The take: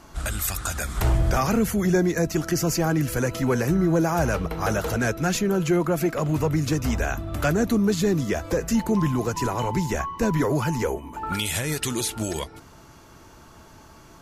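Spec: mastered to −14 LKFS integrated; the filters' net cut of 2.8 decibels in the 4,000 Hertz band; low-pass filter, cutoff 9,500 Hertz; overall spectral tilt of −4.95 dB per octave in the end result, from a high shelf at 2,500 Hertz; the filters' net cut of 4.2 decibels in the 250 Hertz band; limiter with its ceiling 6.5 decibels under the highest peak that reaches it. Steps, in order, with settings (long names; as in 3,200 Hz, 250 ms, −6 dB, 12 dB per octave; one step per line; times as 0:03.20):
low-pass filter 9,500 Hz
parametric band 250 Hz −6.5 dB
high-shelf EQ 2,500 Hz +4 dB
parametric band 4,000 Hz −7.5 dB
level +14 dB
brickwall limiter −4 dBFS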